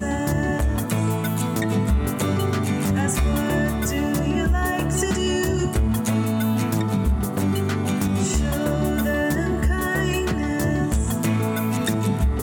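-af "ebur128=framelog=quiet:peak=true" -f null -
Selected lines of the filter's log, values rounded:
Integrated loudness:
  I:         -22.4 LUFS
  Threshold: -32.4 LUFS
Loudness range:
  LRA:         0.4 LU
  Threshold: -42.3 LUFS
  LRA low:   -22.5 LUFS
  LRA high:  -22.0 LUFS
True peak:
  Peak:      -10.9 dBFS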